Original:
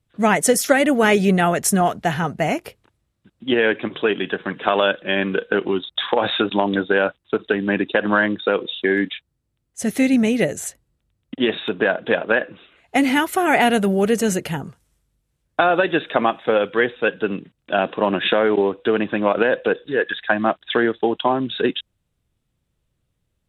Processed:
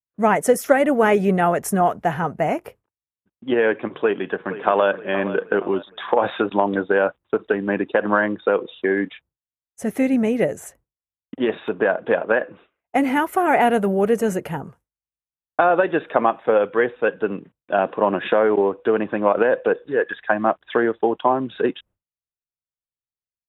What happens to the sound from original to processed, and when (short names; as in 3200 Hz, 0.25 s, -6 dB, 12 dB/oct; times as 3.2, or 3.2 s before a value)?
4–4.88 echo throw 0.47 s, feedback 45%, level -13.5 dB
whole clip: expander -40 dBFS; ten-band EQ 500 Hz +4 dB, 1000 Hz +5 dB, 4000 Hz -11 dB, 8000 Hz -5 dB; gain -3.5 dB